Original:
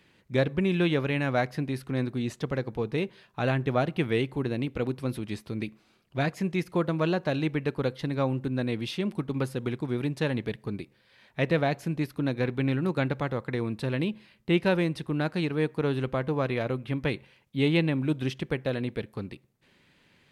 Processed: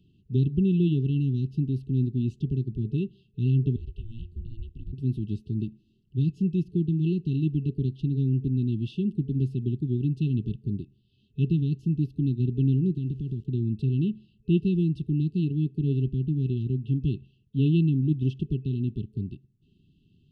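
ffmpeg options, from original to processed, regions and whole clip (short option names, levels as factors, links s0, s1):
-filter_complex "[0:a]asettb=1/sr,asplit=3[s0][s1][s2];[s0]atrim=end=3.764[s3];[s1]atrim=start=3.76:end=4.93,asetpts=PTS-STARTPTS,afade=t=in:d=0.004:c=qsin,afade=t=out:st=1.166:d=0.004:c=qsin,acompressor=threshold=0.0355:ratio=5:attack=3.2:release=140:knee=1:detection=peak,aeval=exprs='val(0)*sin(2*PI*220*n/s)':c=same,equalizer=f=460:w=0.32:g=-12[s4];[s2]atrim=start=4.926[s5];[s3][s4]acrossfade=d=0.004:c1=hsin:c2=qsin[s6];[s6][s5]acrossfade=d=0.004:c1=qsin:c2=hsin,asettb=1/sr,asplit=3[s7][s8][s9];[s7]atrim=end=12.954[s10];[s8]atrim=start=12.95:end=13.46,asetpts=PTS-STARTPTS,afade=t=in:d=0.004:c=qsin,afade=t=out:st=0.506:d=0.004:c=qsin,lowpass=7700,aeval=exprs='val(0)*gte(abs(val(0)),0.00447)':c=same,acompressor=threshold=0.0355:ratio=4:attack=3.2:release=140:knee=1:detection=peak[s11];[s9]atrim=start=13.456[s12];[s10][s11]acrossfade=d=0.004:c1=hsin:c2=qsin[s13];[s13][s12]acrossfade=d=0.004:c1=qsin:c2=hsin,afftfilt=real='re*(1-between(b*sr/4096,420,2600))':imag='im*(1-between(b*sr/4096,420,2600))':win_size=4096:overlap=0.75,lowpass=9200,bass=f=250:g=14,treble=f=4000:g=-14,volume=0.531"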